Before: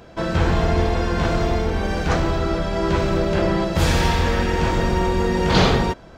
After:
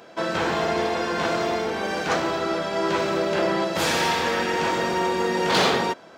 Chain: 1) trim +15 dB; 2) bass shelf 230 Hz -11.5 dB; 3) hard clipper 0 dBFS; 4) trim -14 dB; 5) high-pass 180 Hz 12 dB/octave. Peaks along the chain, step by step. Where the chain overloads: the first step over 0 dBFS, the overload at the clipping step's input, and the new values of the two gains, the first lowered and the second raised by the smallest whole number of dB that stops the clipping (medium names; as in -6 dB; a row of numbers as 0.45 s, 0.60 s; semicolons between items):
+10.5 dBFS, +9.0 dBFS, 0.0 dBFS, -14.0 dBFS, -9.5 dBFS; step 1, 9.0 dB; step 1 +6 dB, step 4 -5 dB